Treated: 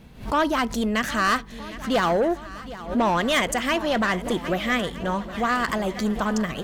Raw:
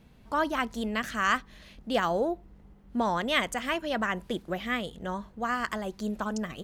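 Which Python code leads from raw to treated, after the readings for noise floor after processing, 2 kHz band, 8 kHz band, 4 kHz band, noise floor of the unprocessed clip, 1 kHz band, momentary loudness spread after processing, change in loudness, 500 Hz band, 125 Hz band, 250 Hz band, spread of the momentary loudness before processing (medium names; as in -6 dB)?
-39 dBFS, +5.5 dB, +9.0 dB, +6.0 dB, -55 dBFS, +6.0 dB, 6 LU, +6.5 dB, +7.0 dB, +8.5 dB, +7.5 dB, 8 LU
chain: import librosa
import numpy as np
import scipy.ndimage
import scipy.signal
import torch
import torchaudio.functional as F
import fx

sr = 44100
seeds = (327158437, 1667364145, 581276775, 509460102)

y = 10.0 ** (-24.5 / 20.0) * np.tanh(x / 10.0 ** (-24.5 / 20.0))
y = fx.echo_swing(y, sr, ms=1268, ratio=1.5, feedback_pct=51, wet_db=-16)
y = fx.pre_swell(y, sr, db_per_s=140.0)
y = y * 10.0 ** (9.0 / 20.0)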